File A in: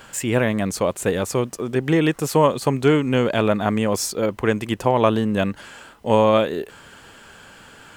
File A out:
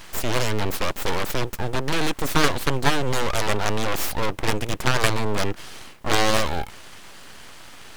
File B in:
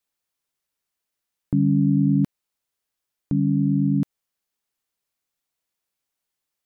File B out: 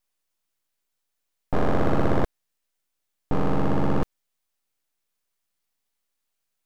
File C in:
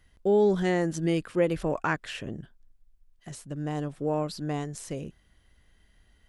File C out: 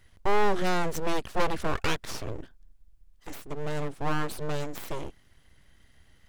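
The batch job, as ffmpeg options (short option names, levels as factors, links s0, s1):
-af "aeval=exprs='0.794*(cos(1*acos(clip(val(0)/0.794,-1,1)))-cos(1*PI/2))+0.126*(cos(4*acos(clip(val(0)/0.794,-1,1)))-cos(4*PI/2))+0.0891*(cos(5*acos(clip(val(0)/0.794,-1,1)))-cos(5*PI/2))+0.398*(cos(7*acos(clip(val(0)/0.794,-1,1)))-cos(7*PI/2))+0.0631*(cos(8*acos(clip(val(0)/0.794,-1,1)))-cos(8*PI/2))':c=same,aeval=exprs='abs(val(0))':c=same,volume=0.841"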